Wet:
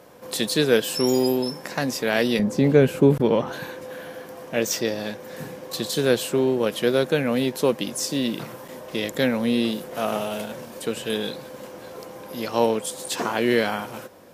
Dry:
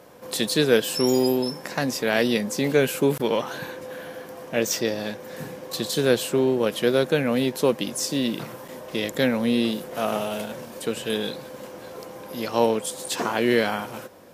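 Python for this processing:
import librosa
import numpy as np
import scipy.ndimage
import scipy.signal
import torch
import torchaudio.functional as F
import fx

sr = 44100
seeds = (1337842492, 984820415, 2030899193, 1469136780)

y = fx.tilt_eq(x, sr, slope=-3.0, at=(2.39, 3.53))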